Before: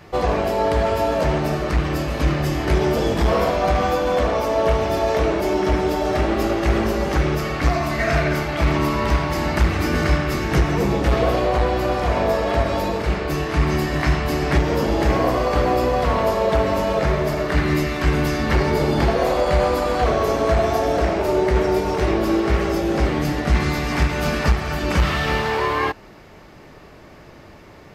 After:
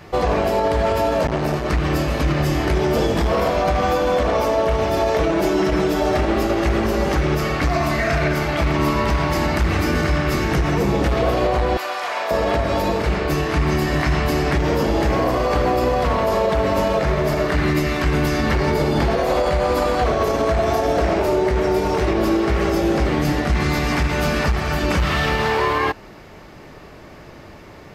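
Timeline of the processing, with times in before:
0:01.27–0:01.70: saturating transformer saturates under 520 Hz
0:05.21–0:06.00: comb filter 6.1 ms
0:11.77–0:12.31: high-pass filter 980 Hz
whole clip: brickwall limiter −13 dBFS; level +3 dB

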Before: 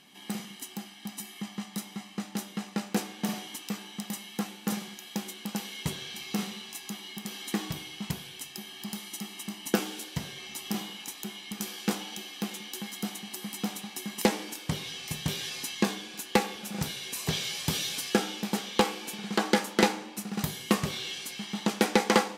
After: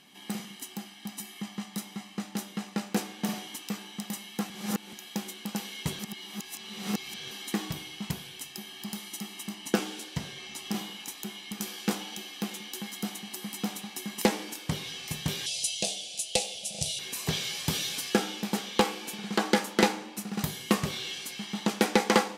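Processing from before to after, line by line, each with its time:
0:04.50–0:04.93: reverse
0:05.99–0:07.31: reverse
0:09.54–0:10.75: parametric band 14,000 Hz −7.5 dB 0.59 octaves
0:15.46–0:16.99: drawn EQ curve 110 Hz 0 dB, 160 Hz −5 dB, 230 Hz −18 dB, 370 Hz −14 dB, 640 Hz +6 dB, 1,000 Hz −23 dB, 1,600 Hz −22 dB, 2,800 Hz +3 dB, 10,000 Hz +10 dB, 15,000 Hz −23 dB

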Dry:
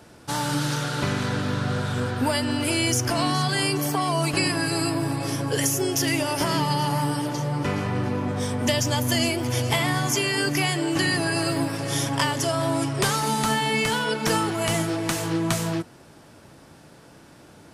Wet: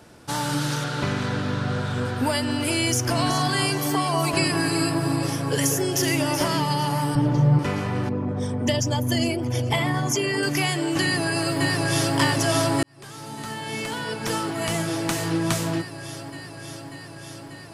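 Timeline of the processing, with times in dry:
0:00.84–0:02.05: high-shelf EQ 9,700 Hz −11.5 dB
0:02.89–0:06.48: delay that swaps between a low-pass and a high-pass 188 ms, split 1,700 Hz, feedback 52%, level −5 dB
0:07.15–0:07.59: RIAA equalisation playback
0:08.09–0:10.43: spectral envelope exaggerated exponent 1.5
0:11.01–0:12.17: delay throw 590 ms, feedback 80%, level −1.5 dB
0:12.83–0:15.27: fade in

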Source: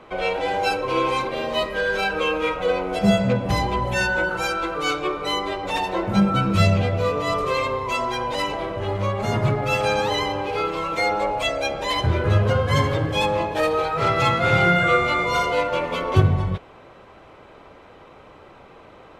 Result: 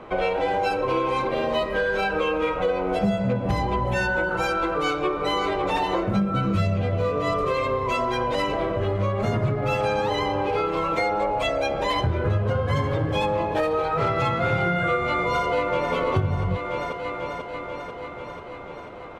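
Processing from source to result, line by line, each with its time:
0:04.73–0:05.46: delay throw 550 ms, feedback 40%, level −7.5 dB
0:06.02–0:09.65: notch filter 870 Hz, Q 5.1
0:15.08–0:15.94: delay throw 490 ms, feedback 70%, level −8 dB
whole clip: high-shelf EQ 2,500 Hz −9.5 dB; downward compressor 5 to 1, threshold −26 dBFS; level +5.5 dB

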